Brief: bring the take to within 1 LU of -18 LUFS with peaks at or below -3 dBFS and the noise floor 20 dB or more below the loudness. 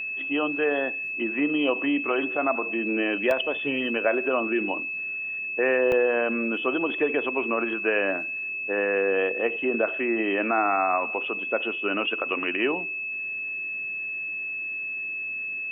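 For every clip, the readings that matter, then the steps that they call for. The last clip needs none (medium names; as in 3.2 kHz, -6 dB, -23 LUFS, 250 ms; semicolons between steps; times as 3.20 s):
dropouts 2; longest dropout 1.4 ms; steady tone 2.6 kHz; tone level -29 dBFS; loudness -25.5 LUFS; peak level -9.5 dBFS; loudness target -18.0 LUFS
-> interpolate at 3.31/5.92 s, 1.4 ms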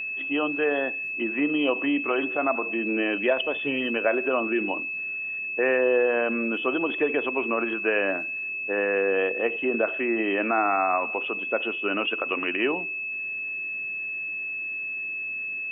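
dropouts 0; steady tone 2.6 kHz; tone level -29 dBFS
-> band-stop 2.6 kHz, Q 30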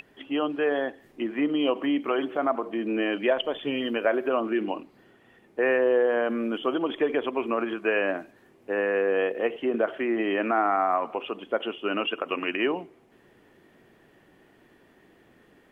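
steady tone not found; loudness -26.5 LUFS; peak level -10.0 dBFS; loudness target -18.0 LUFS
-> trim +8.5 dB; peak limiter -3 dBFS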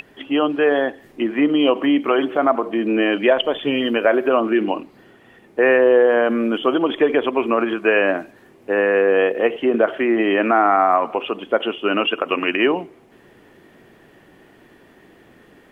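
loudness -18.5 LUFS; peak level -3.0 dBFS; noise floor -51 dBFS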